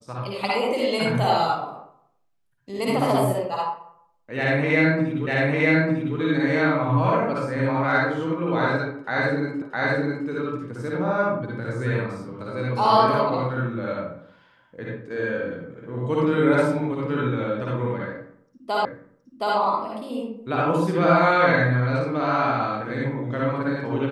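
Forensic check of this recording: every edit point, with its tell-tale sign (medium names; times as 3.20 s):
5.27 s: repeat of the last 0.9 s
9.62 s: repeat of the last 0.66 s
18.85 s: repeat of the last 0.72 s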